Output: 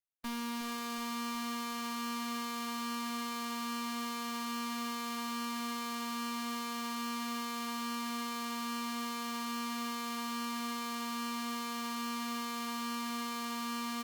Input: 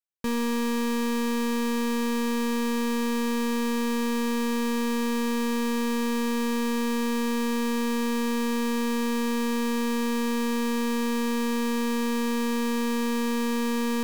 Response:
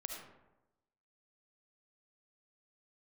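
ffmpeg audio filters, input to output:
-filter_complex "[0:a]highpass=230,lowshelf=f=610:t=q:w=1.5:g=-11.5,acrossover=split=340[s0][s1];[s0]acontrast=90[s2];[s1]aeval=exprs='max(val(0),0)':c=same[s3];[s2][s3]amix=inputs=2:normalize=0,flanger=delay=6.5:depth=1.3:regen=-64:speed=1.2:shape=sinusoidal,aecho=1:1:367|734|1101|1468|1835|2202|2569:0.355|0.209|0.124|0.0729|0.043|0.0254|0.015" -ar 48000 -c:a libopus -b:a 32k

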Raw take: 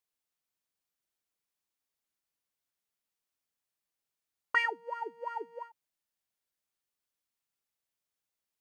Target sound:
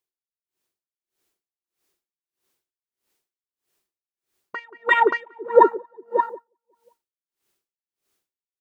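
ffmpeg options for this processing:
-filter_complex "[0:a]dynaudnorm=f=440:g=3:m=4.47,equalizer=f=370:w=3.3:g=12.5,asettb=1/sr,asplit=3[s0][s1][s2];[s0]atrim=end=4.594[s3];[s1]atrim=start=4.59:end=5.39,asetpts=PTS-STARTPTS,afade=t=in:d=0.004:c=qsin,afade=t=out:st=0.796:d=0.004:c=qsin,acrossover=split=250[s4][s5];[s5]acompressor=threshold=0.0316:ratio=6[s6];[s4][s6]amix=inputs=2:normalize=0[s7];[s2]atrim=start=5.386[s8];[s3][s7]acrossfade=d=0.004:c1=hsin:c2=qsin[s9];[s9][s8]acrossfade=d=0.004:c1=qsin:c2=hsin,asplit=2[s10][s11];[s11]aecho=0:1:344|578:0.237|0.562[s12];[s10][s12]amix=inputs=2:normalize=0,afwtdn=0.0112,asplit=2[s13][s14];[s14]adelay=180,lowpass=f=1300:p=1,volume=0.188,asplit=2[s15][s16];[s16]adelay=180,lowpass=f=1300:p=1,volume=0.4,asplit=2[s17][s18];[s18]adelay=180,lowpass=f=1300:p=1,volume=0.4,asplit=2[s19][s20];[s20]adelay=180,lowpass=f=1300:p=1,volume=0.4[s21];[s15][s17][s19][s21]amix=inputs=4:normalize=0[s22];[s13][s22]amix=inputs=2:normalize=0,alimiter=level_in=6.68:limit=0.891:release=50:level=0:latency=1,aeval=exprs='val(0)*pow(10,-35*(0.5-0.5*cos(2*PI*1.6*n/s))/20)':c=same,volume=1.12"

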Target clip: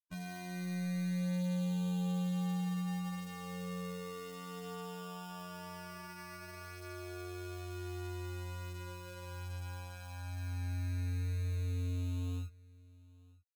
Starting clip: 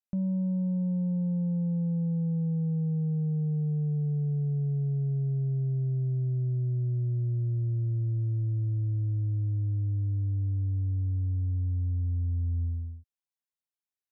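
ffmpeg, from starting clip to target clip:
-af "equalizer=f=380:t=o:w=0.42:g=-11.5,afftfilt=real='re*gte(hypot(re,im),0.0562)':imag='im*gte(hypot(re,im),0.0562)':win_size=1024:overlap=0.75,lowshelf=f=110:g=-5,aecho=1:1:3.5:0.38,dynaudnorm=f=150:g=7:m=3.98,alimiter=limit=0.0631:level=0:latency=1:release=57,acrusher=samples=35:mix=1:aa=0.000001,asoftclip=type=hard:threshold=0.0211,afftfilt=real='hypot(re,im)*cos(PI*b)':imag='0':win_size=2048:overlap=0.75,flanger=delay=1.7:depth=5.3:regen=-34:speed=0.25:shape=triangular,aecho=1:1:969:0.0668,asetrate=45938,aresample=44100,volume=1.41"

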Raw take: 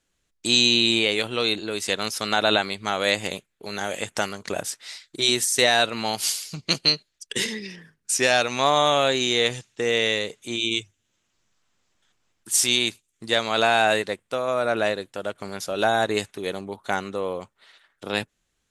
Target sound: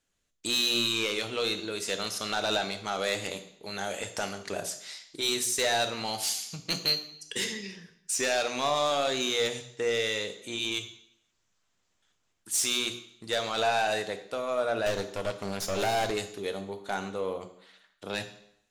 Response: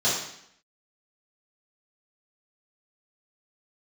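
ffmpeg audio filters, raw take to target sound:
-filter_complex "[0:a]bandreject=f=60:t=h:w=6,bandreject=f=120:t=h:w=6,bandreject=f=180:t=h:w=6,bandreject=f=240:t=h:w=6,bandreject=f=300:t=h:w=6,bandreject=f=360:t=h:w=6,asoftclip=type=tanh:threshold=0.158,asettb=1/sr,asplit=3[s0][s1][s2];[s0]atrim=end=14.864[s3];[s1]atrim=start=14.86:end=16.11,asetpts=PTS-STARTPTS,afade=t=in:d=0.004:c=qsin,afade=t=out:st=1.246:d=0.004:c=qsin,aeval=exprs='0.158*(cos(1*acos(clip(val(0)/0.158,-1,1)))-cos(1*PI/2))+0.0631*(cos(2*acos(clip(val(0)/0.158,-1,1)))-cos(2*PI/2))+0.0316*(cos(4*acos(clip(val(0)/0.158,-1,1)))-cos(4*PI/2))+0.02*(cos(5*acos(clip(val(0)/0.158,-1,1)))-cos(5*PI/2))+0.0178*(cos(8*acos(clip(val(0)/0.158,-1,1)))-cos(8*PI/2))':c=same[s4];[s2]atrim=start=16.106[s5];[s3][s4]acrossfade=d=0.004:c1=hsin:c2=qsin[s6];[s6][s5]acrossfade=d=0.004:c1=qsin:c2=hsin,asplit=2[s7][s8];[1:a]atrim=start_sample=2205,highshelf=f=8000:g=9,adelay=5[s9];[s8][s9]afir=irnorm=-1:irlink=0,volume=0.0794[s10];[s7][s10]amix=inputs=2:normalize=0,volume=0.562"

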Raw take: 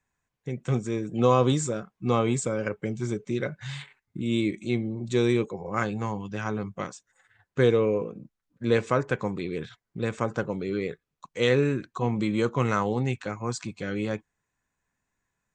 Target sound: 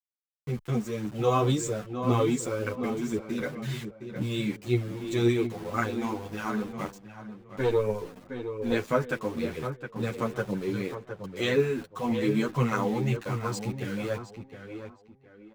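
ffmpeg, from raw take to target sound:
-filter_complex "[0:a]aeval=exprs='val(0)*gte(abs(val(0)),0.0112)':c=same,aphaser=in_gain=1:out_gain=1:delay=4.7:decay=0.45:speed=1.9:type=triangular,asplit=2[s0][s1];[s1]adelay=714,lowpass=f=2800:p=1,volume=0.398,asplit=2[s2][s3];[s3]adelay=714,lowpass=f=2800:p=1,volume=0.26,asplit=2[s4][s5];[s5]adelay=714,lowpass=f=2800:p=1,volume=0.26[s6];[s0][s2][s4][s6]amix=inputs=4:normalize=0,asettb=1/sr,asplit=3[s7][s8][s9];[s7]atrim=end=6.894[s10];[s8]atrim=start=6.89:end=8.72,asetpts=PTS-STARTPTS,afade=t=in:d=0.004:c=qsin,afade=t=out:st=1.826:d=0.004:c=qsin,aeval=exprs='(tanh(4.47*val(0)+0.6)-tanh(0.6))/4.47':c=same[s11];[s9]atrim=start=8.716[s12];[s10][s11]acrossfade=d=0.004:c1=hsin:c2=qsin[s13];[s13][s12]acrossfade=d=0.004:c1=qsin:c2=hsin,asplit=2[s14][s15];[s15]adelay=9.6,afreqshift=-0.33[s16];[s14][s16]amix=inputs=2:normalize=1"

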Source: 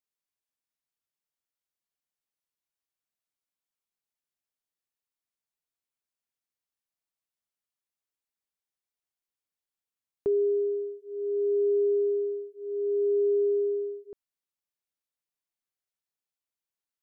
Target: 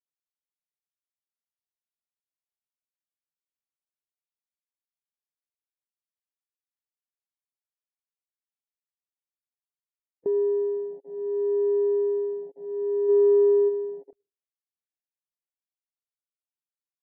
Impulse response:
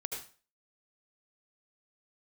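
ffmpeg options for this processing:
-filter_complex "[0:a]asplit=2[s0][s1];[1:a]atrim=start_sample=2205[s2];[s1][s2]afir=irnorm=-1:irlink=0,volume=0.075[s3];[s0][s3]amix=inputs=2:normalize=0,afwtdn=0.02,asplit=3[s4][s5][s6];[s4]afade=t=out:st=13.08:d=0.02[s7];[s5]acontrast=24,afade=t=in:st=13.08:d=0.02,afade=t=out:st=13.68:d=0.02[s8];[s6]afade=t=in:st=13.68:d=0.02[s9];[s7][s8][s9]amix=inputs=3:normalize=0" -ar 32000 -c:a libvorbis -b:a 96k

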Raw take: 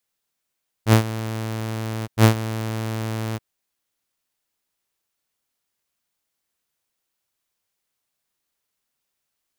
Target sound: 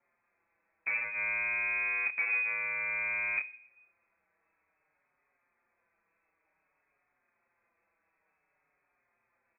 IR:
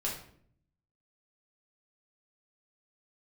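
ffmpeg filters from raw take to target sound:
-filter_complex "[0:a]acompressor=threshold=0.0631:ratio=16,aeval=exprs='0.0841*sin(PI/2*3.98*val(0)/0.0841)':c=same,asplit=2[s0][s1];[s1]adelay=29,volume=0.631[s2];[s0][s2]amix=inputs=2:normalize=0,asplit=2[s3][s4];[1:a]atrim=start_sample=2205[s5];[s4][s5]afir=irnorm=-1:irlink=0,volume=0.126[s6];[s3][s6]amix=inputs=2:normalize=0,lowpass=f=2200:t=q:w=0.5098,lowpass=f=2200:t=q:w=0.6013,lowpass=f=2200:t=q:w=0.9,lowpass=f=2200:t=q:w=2.563,afreqshift=-2600,asplit=2[s7][s8];[s8]adelay=5.2,afreqshift=-0.55[s9];[s7][s9]amix=inputs=2:normalize=1,volume=0.631"

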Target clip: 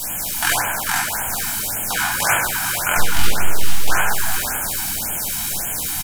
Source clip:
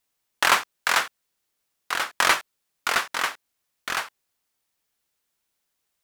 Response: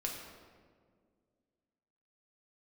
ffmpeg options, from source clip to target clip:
-filter_complex "[0:a]aeval=exprs='val(0)+0.5*0.0531*sgn(val(0))':c=same,aecho=1:1:1.3:0.52,acrossover=split=180|7000[s0][s1][s2];[s1]alimiter=limit=0.211:level=0:latency=1:release=288[s3];[s2]acontrast=76[s4];[s0][s3][s4]amix=inputs=3:normalize=0,asplit=3[s5][s6][s7];[s5]afade=t=out:st=0.6:d=0.02[s8];[s6]aeval=exprs='val(0)*sin(2*PI*31*n/s)':c=same,afade=t=in:st=0.6:d=0.02,afade=t=out:st=1.01:d=0.02[s9];[s7]afade=t=in:st=1.01:d=0.02[s10];[s8][s9][s10]amix=inputs=3:normalize=0,flanger=delay=16.5:depth=6.3:speed=0.51,asplit=2[s11][s12];[s12]adynamicsmooth=sensitivity=3.5:basefreq=540,volume=0.794[s13];[s11][s13]amix=inputs=2:normalize=0,asettb=1/sr,asplit=3[s14][s15][s16];[s14]atrim=end=2.974[s17];[s15]atrim=start=2.97:end=3.9,asetpts=PTS-STARTPTS,afade=t=in:d=0.004:c=qsin,afade=t=out:st=0.926:d=0.004:c=qsin,aeval=exprs='abs(val(0))':c=same[s18];[s16]atrim=start=3.896[s19];[s17][s18]acrossfade=d=0.004:c1=hsin:c2=qsin[s20];[s20][s19]acrossfade=d=0.004:c1=qsin:c2=hsin,aecho=1:1:442:0.398[s21];[1:a]atrim=start_sample=2205,asetrate=30429,aresample=44100[s22];[s21][s22]afir=irnorm=-1:irlink=0,afftfilt=real='re*(1-between(b*sr/1024,430*pow(4800/430,0.5+0.5*sin(2*PI*1.8*pts/sr))/1.41,430*pow(4800/430,0.5+0.5*sin(2*PI*1.8*pts/sr))*1.41))':imag='im*(1-between(b*sr/1024,430*pow(4800/430,0.5+0.5*sin(2*PI*1.8*pts/sr))/1.41,430*pow(4800/430,0.5+0.5*sin(2*PI*1.8*pts/sr))*1.41))':win_size=1024:overlap=0.75,volume=1.5"

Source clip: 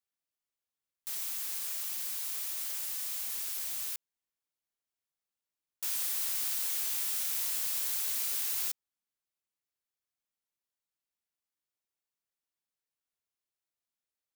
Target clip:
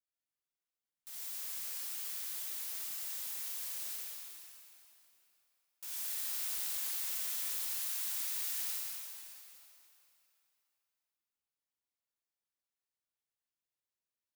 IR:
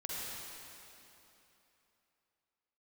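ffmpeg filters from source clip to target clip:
-filter_complex "[0:a]asettb=1/sr,asplit=3[s0][s1][s2];[s0]atrim=end=7.564[s3];[s1]atrim=start=7.56:end=8.58,asetpts=PTS-STARTPTS,afade=t=in:d=0.004:c=qsin,afade=t=out:st=1.016:d=0.004:c=qsin,highpass=630[s4];[s2]atrim=start=8.576[s5];[s3][s4]acrossfade=d=0.004:c1=hsin:c2=qsin[s6];[s6][s5]acrossfade=d=0.004:c1=qsin:c2=hsin[s7];[1:a]atrim=start_sample=2205[s8];[s7][s8]afir=irnorm=-1:irlink=0,volume=0.501"

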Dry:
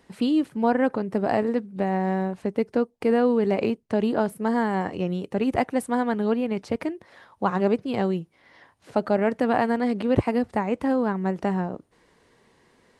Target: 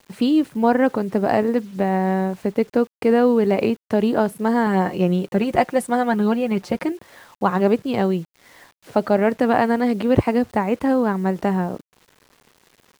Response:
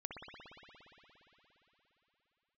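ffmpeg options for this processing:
-filter_complex "[0:a]asettb=1/sr,asplit=3[s0][s1][s2];[s0]atrim=end=4.664[s3];[s1]atrim=start=4.66:end=6.92,asetpts=PTS-STARTPTS,afade=t=in:d=0.004:c=qsin,afade=t=out:st=2.256:d=0.004:c=qsin,aecho=1:1:5.6:0.54,atrim=end_sample=99666[s4];[s2]atrim=start=6.916[s5];[s3][s4]acrossfade=d=0.004:c1=hsin:c2=qsin[s6];[s6][s5]acrossfade=d=0.004:c1=qsin:c2=hsin,acrusher=bits=8:mix=0:aa=0.000001,volume=1.68"

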